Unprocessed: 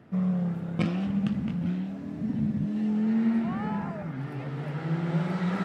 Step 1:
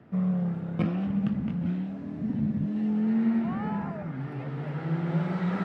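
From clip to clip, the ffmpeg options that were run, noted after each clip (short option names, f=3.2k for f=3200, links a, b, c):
-filter_complex "[0:a]lowpass=f=2.8k:p=1,acrossover=split=250|2200[a][b][c];[c]alimiter=level_in=13dB:limit=-24dB:level=0:latency=1:release=462,volume=-13dB[d];[a][b][d]amix=inputs=3:normalize=0"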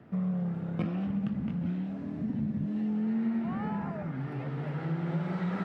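-af "acompressor=threshold=-31dB:ratio=2"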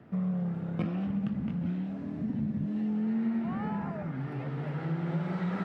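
-af anull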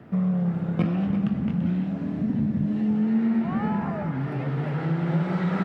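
-af "aecho=1:1:338:0.299,volume=7dB"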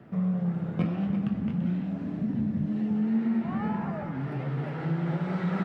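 -af "flanger=delay=5.2:depth=5.5:regen=-57:speed=1.8:shape=sinusoidal"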